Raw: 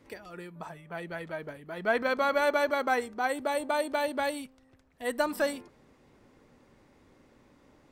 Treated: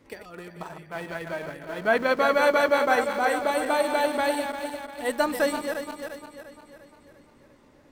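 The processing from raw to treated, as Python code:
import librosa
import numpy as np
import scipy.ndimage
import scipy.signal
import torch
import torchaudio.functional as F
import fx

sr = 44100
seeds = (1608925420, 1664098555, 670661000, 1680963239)

p1 = fx.reverse_delay_fb(x, sr, ms=174, feedback_pct=72, wet_db=-7)
p2 = np.where(np.abs(p1) >= 10.0 ** (-36.0 / 20.0), p1, 0.0)
p3 = p1 + F.gain(torch.from_numpy(p2), -9.0).numpy()
y = F.gain(torch.from_numpy(p3), 1.5).numpy()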